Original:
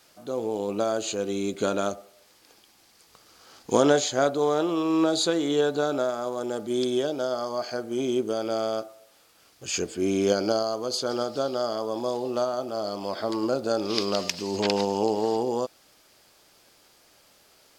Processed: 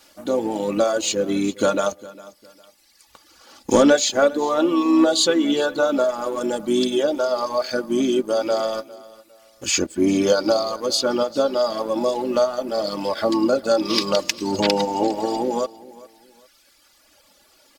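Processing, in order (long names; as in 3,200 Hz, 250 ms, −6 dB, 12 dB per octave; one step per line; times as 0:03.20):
reverb reduction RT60 2 s
comb filter 3.5 ms, depth 62%
leveller curve on the samples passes 1
in parallel at +0.5 dB: downward compressor, threshold −29 dBFS, peak gain reduction 15.5 dB
on the sum: pitch-shifted copies added −4 semitones −14 dB
on a send: repeating echo 405 ms, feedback 30%, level −20 dB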